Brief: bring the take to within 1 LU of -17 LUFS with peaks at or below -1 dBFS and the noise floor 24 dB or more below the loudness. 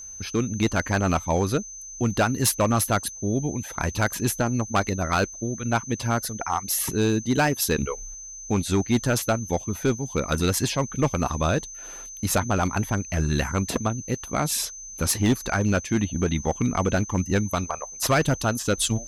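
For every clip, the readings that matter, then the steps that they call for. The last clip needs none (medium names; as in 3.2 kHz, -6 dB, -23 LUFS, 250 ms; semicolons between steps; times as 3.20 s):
clipped samples 1.0%; clipping level -14.5 dBFS; steady tone 6.2 kHz; tone level -37 dBFS; loudness -25.0 LUFS; peak level -14.5 dBFS; loudness target -17.0 LUFS
-> clip repair -14.5 dBFS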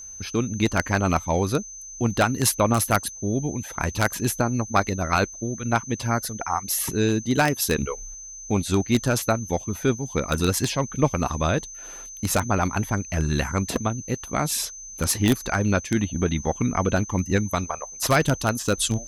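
clipped samples 0.0%; steady tone 6.2 kHz; tone level -37 dBFS
-> band-stop 6.2 kHz, Q 30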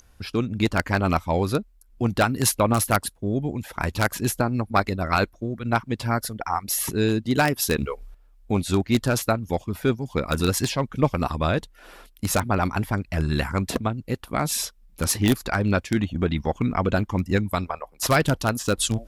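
steady tone not found; loudness -24.5 LUFS; peak level -5.5 dBFS; loudness target -17.0 LUFS
-> trim +7.5 dB; peak limiter -1 dBFS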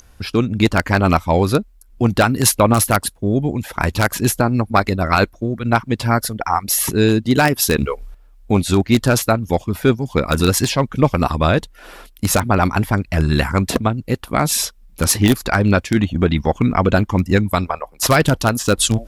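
loudness -17.5 LUFS; peak level -1.0 dBFS; noise floor -48 dBFS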